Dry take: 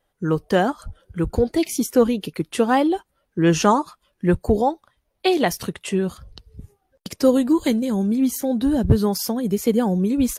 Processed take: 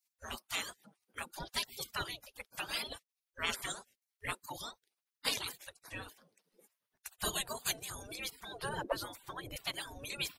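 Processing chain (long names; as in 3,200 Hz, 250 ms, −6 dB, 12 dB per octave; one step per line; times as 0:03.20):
0:08.69–0:09.56: tilt shelving filter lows +7.5 dB, about 790 Hz
reverb reduction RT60 1.2 s
gate on every frequency bin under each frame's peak −30 dB weak
level +4.5 dB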